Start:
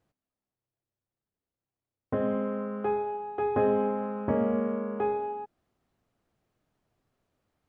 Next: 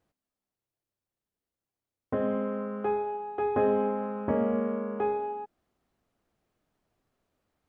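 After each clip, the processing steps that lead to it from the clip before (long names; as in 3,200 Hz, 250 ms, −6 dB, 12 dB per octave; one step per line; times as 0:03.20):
parametric band 120 Hz −5 dB 0.73 octaves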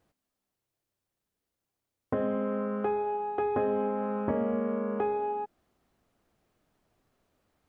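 downward compressor 3 to 1, threshold −32 dBFS, peak gain reduction 8.5 dB
level +4.5 dB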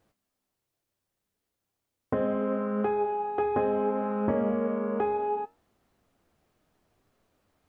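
flanger 0.69 Hz, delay 8.9 ms, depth 4.7 ms, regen +76%
level +6.5 dB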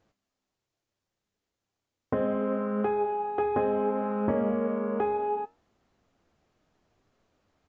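downsampling to 16,000 Hz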